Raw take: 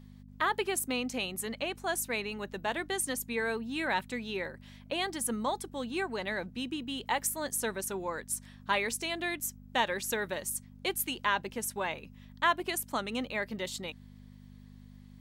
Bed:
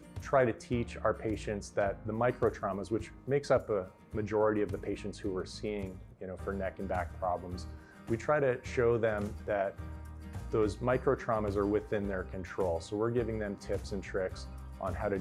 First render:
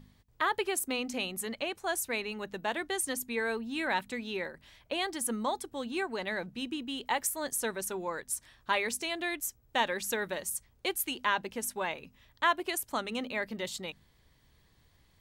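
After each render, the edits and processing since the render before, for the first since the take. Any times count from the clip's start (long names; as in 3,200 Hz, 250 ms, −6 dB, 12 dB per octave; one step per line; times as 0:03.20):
hum removal 50 Hz, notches 5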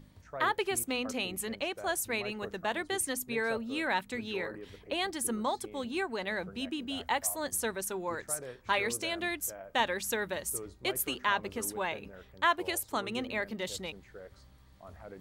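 mix in bed −14.5 dB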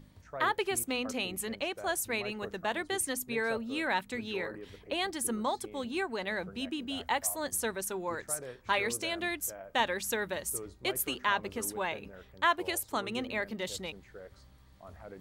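no processing that can be heard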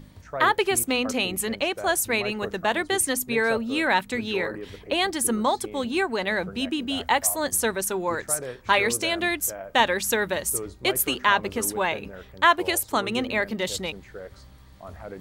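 level +9 dB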